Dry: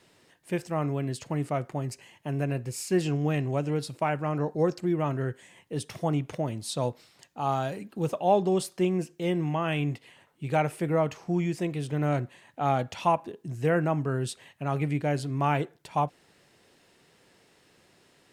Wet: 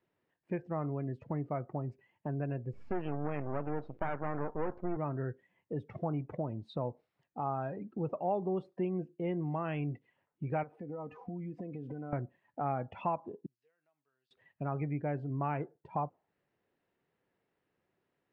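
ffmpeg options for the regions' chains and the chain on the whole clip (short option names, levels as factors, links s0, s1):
-filter_complex "[0:a]asettb=1/sr,asplit=3[s0][s1][s2];[s0]atrim=end=2.734[s3];[s1]atrim=start=2.73:end=4.97,asetpts=PTS-STARTPTS,afade=t=in:d=0.004:c=qsin,afade=t=out:st=2.236:d=0.004:c=qsin,asplit=2[s4][s5];[s5]highpass=f=720:p=1,volume=8.91,asoftclip=type=tanh:threshold=0.237[s6];[s4][s6]amix=inputs=2:normalize=0,lowpass=f=1600:p=1,volume=0.501,aeval=exprs='max(val(0),0)':c=same[s7];[s2]atrim=start=4.966[s8];[s3][s7]acrossfade=d=0.004:c1=hsin:c2=qsin[s9];[s9][s8]acrossfade=d=0.004:c1=qsin:c2=hsin,asettb=1/sr,asplit=3[s10][s11][s12];[s10]atrim=end=10.634[s13];[s11]atrim=start=10.63:end=12.13,asetpts=PTS-STARTPTS,afade=t=in:d=0.004:c=qsin,afade=t=out:st=1.496:d=0.004:c=qsin,aecho=1:1:4:0.47,atrim=end_sample=66150,acompressor=threshold=0.0141:ratio=8:attack=3.2:release=140:knee=1:detection=peak[s14];[s12]atrim=start=12.126[s15];[s13][s14]acrossfade=d=0.004:c1=hsin:c2=qsin[s16];[s16][s15]acrossfade=d=0.004:c1=qsin:c2=hsin,asettb=1/sr,asplit=3[s17][s18][s19];[s17]atrim=end=13.464[s20];[s18]atrim=start=13.46:end=14.31,asetpts=PTS-STARTPTS,afade=t=in:d=0.004:c=qsin,afade=t=out:st=0.846:d=0.004:c=qsin,bandpass=f=4700:t=q:w=4.8,acompressor=threshold=0.00158:ratio=6:attack=3.2:release=140:knee=1:detection=peak[s21];[s19]atrim=start=14.306[s22];[s20][s21]acrossfade=d=0.004:c1=hsin:c2=qsin[s23];[s23][s22]acrossfade=d=0.004:c1=qsin:c2=hsin,lowpass=2000,afftdn=nr=20:nf=-44,acompressor=threshold=0.01:ratio=2,volume=1.19"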